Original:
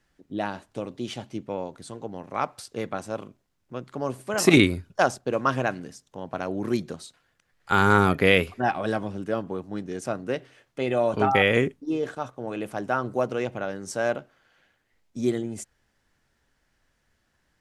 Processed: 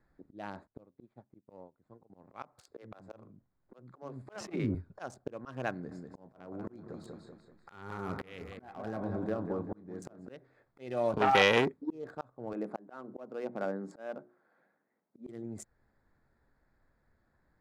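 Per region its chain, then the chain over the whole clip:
0.67–2.1 median filter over 9 samples + LPF 9500 Hz + upward expander 2.5:1, over -42 dBFS
2.61–4.75 treble ducked by the level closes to 1300 Hz, closed at -15 dBFS + bands offset in time highs, lows 70 ms, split 280 Hz
5.72–10.27 compressor 5:1, threshold -29 dBFS + doubler 28 ms -11.5 dB + feedback echo 0.192 s, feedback 40%, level -7.5 dB
11.18–11.91 HPF 230 Hz 6 dB/oct + core saturation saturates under 2000 Hz
12.53–15.29 Chebyshev high-pass 190 Hz, order 3 + high shelf 2100 Hz -10 dB + notches 60/120/180/240/300/360/420 Hz
whole clip: Wiener smoothing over 15 samples; auto swell 0.566 s

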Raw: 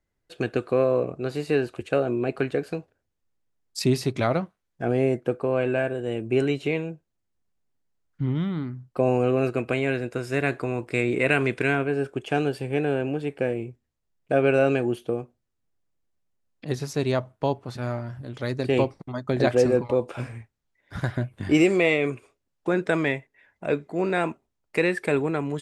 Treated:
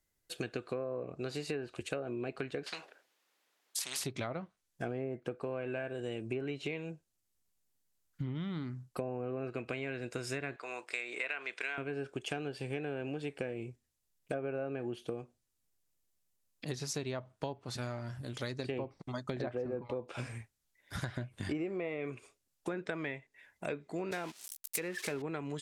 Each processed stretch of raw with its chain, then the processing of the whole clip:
2.66–4.04 resonant high-pass 310 Hz, resonance Q 1.5 + three-band isolator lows -15 dB, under 580 Hz, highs -16 dB, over 4100 Hz + spectral compressor 4:1
10.56–11.78 HPF 740 Hz + air absorption 68 m
24.11–25.22 switching spikes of -17.5 dBFS + gate -30 dBFS, range -16 dB
whole clip: treble ducked by the level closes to 1300 Hz, closed at -16.5 dBFS; pre-emphasis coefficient 0.8; compressor 6:1, threshold -43 dBFS; gain +8.5 dB

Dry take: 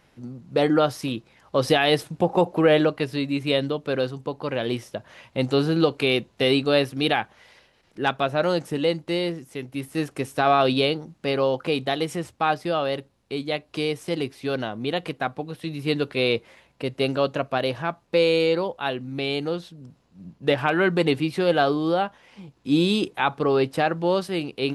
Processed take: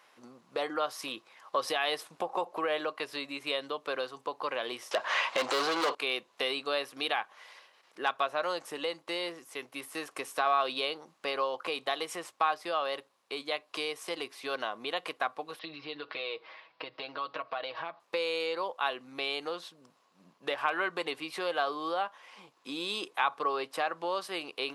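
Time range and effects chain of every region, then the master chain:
4.91–5.95 LPF 7700 Hz + overdrive pedal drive 30 dB, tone 4100 Hz, clips at -6.5 dBFS
15.59–18 compressor 5:1, threshold -32 dBFS + steep low-pass 5000 Hz 48 dB/oct + comb 6.3 ms
whole clip: compressor 3:1, threshold -27 dBFS; HPF 620 Hz 12 dB/oct; bell 1100 Hz +9 dB 0.23 oct

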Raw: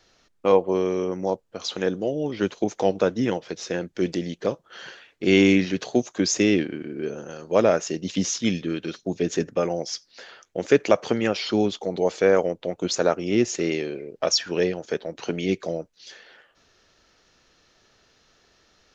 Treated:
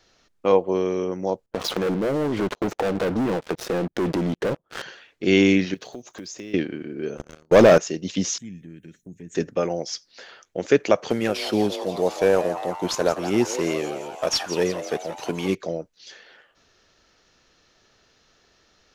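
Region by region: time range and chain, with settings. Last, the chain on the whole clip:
1.46–4.82 LPF 1000 Hz 6 dB/oct + sample leveller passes 5 + compressor 10:1, threshold -21 dBFS
5.74–6.54 block floating point 7-bit + compressor 5:1, threshold -35 dBFS
7.17–7.78 gate -35 dBFS, range -15 dB + sample leveller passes 3 + low shelf 130 Hz +7.5 dB
8.38–9.35 EQ curve 180 Hz 0 dB, 1100 Hz -27 dB, 1800 Hz -6 dB, 4800 Hz -26 dB, 8600 Hz +10 dB + compressor 2:1, threshold -43 dBFS
11.1–15.55 CVSD 64 kbps + frequency-shifting echo 0.171 s, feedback 65%, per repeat +140 Hz, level -12 dB
whole clip: dry

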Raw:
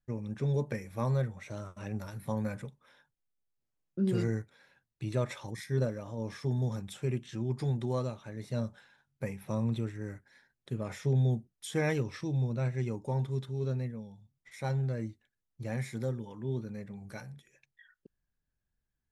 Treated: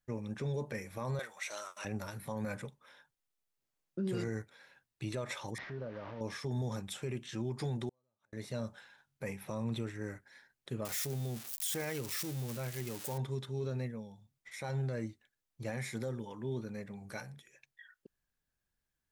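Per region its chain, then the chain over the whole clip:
1.19–1.85 HPF 670 Hz + high shelf 2100 Hz +9 dB
5.58–6.21 delta modulation 32 kbps, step -40 dBFS + LPF 1900 Hz + compressor 3:1, threshold -40 dBFS
7.89–8.33 bell 2700 Hz -6.5 dB 1.3 oct + compressor 3:1, threshold -48 dBFS + flipped gate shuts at -47 dBFS, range -34 dB
10.85–13.18 switching spikes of -28 dBFS + notch 960 Hz, Q 29 + compressor 5:1, threshold -32 dBFS
whole clip: low shelf 280 Hz -8.5 dB; limiter -31.5 dBFS; gain +3.5 dB

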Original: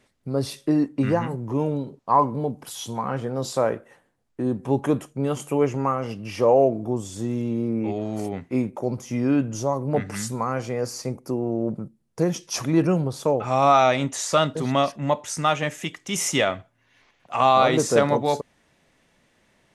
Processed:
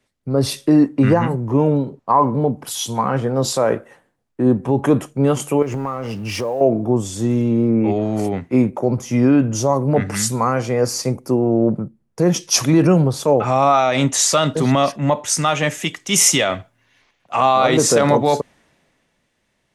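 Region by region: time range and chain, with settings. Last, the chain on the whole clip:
5.62–6.61 G.711 law mismatch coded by mu + compressor 10:1, threshold -26 dBFS
whole clip: maximiser +14 dB; three-band expander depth 40%; gain -4.5 dB

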